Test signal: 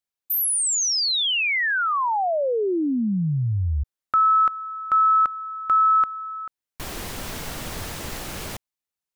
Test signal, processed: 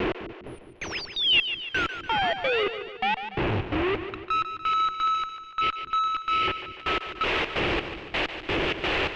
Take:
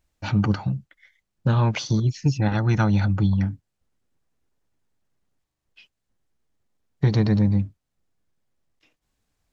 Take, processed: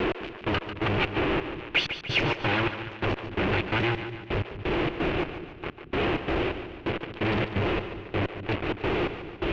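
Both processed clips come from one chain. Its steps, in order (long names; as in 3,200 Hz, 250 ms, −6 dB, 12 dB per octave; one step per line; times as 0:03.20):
delay that plays each chunk backwards 658 ms, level −4 dB
wind on the microphone 240 Hz −30 dBFS
low shelf with overshoot 280 Hz −6.5 dB, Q 3
brickwall limiter −18 dBFS
downward compressor 4 to 1, threshold −39 dBFS
gate pattern "x...x..xx.x" 129 BPM −24 dB
fuzz pedal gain 65 dB, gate −56 dBFS
transistor ladder low-pass 3,100 Hz, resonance 55%
on a send: echo with a time of its own for lows and highs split 350 Hz, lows 204 ms, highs 145 ms, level −10 dB
on the sum: level −1.5 dB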